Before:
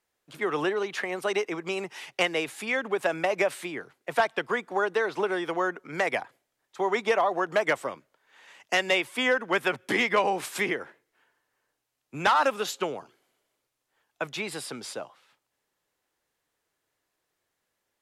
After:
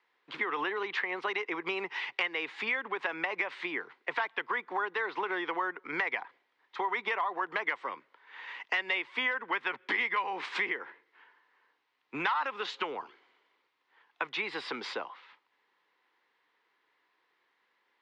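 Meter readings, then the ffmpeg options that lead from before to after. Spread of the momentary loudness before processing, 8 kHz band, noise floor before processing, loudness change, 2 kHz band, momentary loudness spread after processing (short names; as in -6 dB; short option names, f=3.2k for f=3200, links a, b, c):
12 LU, under -15 dB, -81 dBFS, -5.5 dB, -2.5 dB, 11 LU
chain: -filter_complex "[0:a]highpass=350,equalizer=f=620:t=q:w=4:g=-10,equalizer=f=1k:t=q:w=4:g=7,equalizer=f=2k:t=q:w=4:g=6,lowpass=f=4k:w=0.5412,lowpass=f=4k:w=1.3066,acrossover=split=760|1300[a][b][c];[a]alimiter=level_in=5.5dB:limit=-24dB:level=0:latency=1,volume=-5.5dB[d];[d][b][c]amix=inputs=3:normalize=0,acompressor=threshold=-39dB:ratio=3,volume=6dB"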